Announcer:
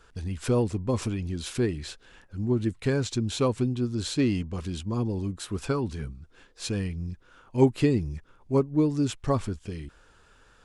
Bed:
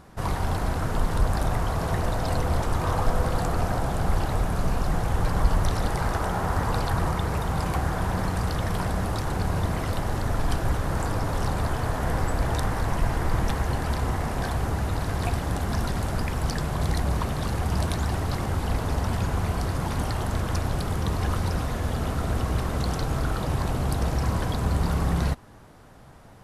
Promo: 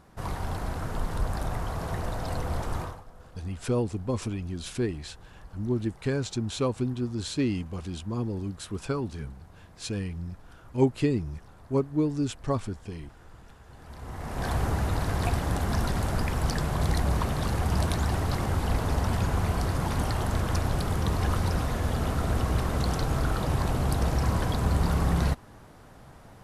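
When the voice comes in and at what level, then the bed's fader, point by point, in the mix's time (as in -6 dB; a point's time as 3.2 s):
3.20 s, -2.5 dB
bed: 2.81 s -6 dB
3.05 s -26.5 dB
13.64 s -26.5 dB
14.51 s -0.5 dB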